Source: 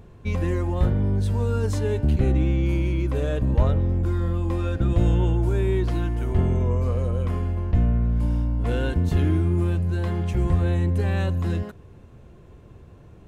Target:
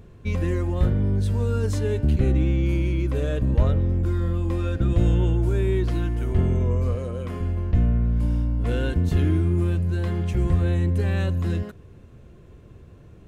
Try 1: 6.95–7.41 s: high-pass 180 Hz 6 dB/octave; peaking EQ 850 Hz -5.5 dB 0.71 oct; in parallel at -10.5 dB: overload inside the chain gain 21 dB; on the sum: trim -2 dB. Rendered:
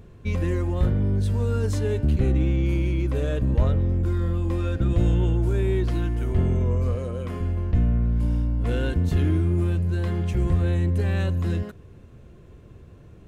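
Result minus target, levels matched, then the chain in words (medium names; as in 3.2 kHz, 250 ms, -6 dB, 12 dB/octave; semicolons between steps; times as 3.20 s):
overload inside the chain: distortion +30 dB
6.95–7.41 s: high-pass 180 Hz 6 dB/octave; peaking EQ 850 Hz -5.5 dB 0.71 oct; in parallel at -10.5 dB: overload inside the chain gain 10 dB; on the sum: trim -2 dB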